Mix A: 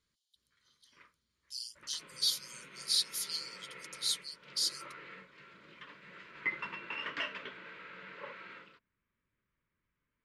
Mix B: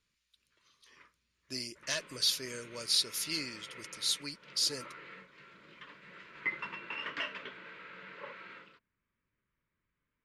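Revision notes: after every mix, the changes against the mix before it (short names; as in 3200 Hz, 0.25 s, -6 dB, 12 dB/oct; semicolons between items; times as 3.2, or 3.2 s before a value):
speech: remove rippled Chebyshev high-pass 3000 Hz, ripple 3 dB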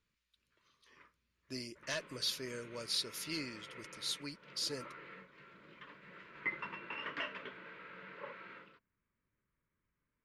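master: add bell 8600 Hz -9 dB 2.9 oct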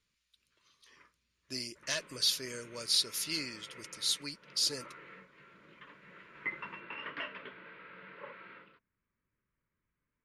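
background: add air absorption 290 m; master: add bell 8600 Hz +9 dB 2.9 oct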